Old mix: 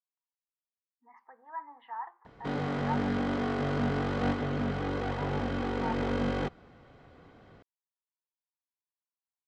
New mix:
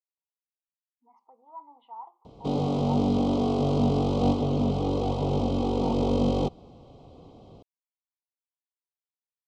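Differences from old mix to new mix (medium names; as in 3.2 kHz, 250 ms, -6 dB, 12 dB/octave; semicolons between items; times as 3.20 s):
background +6.5 dB; master: add Butterworth band-stop 1.7 kHz, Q 0.79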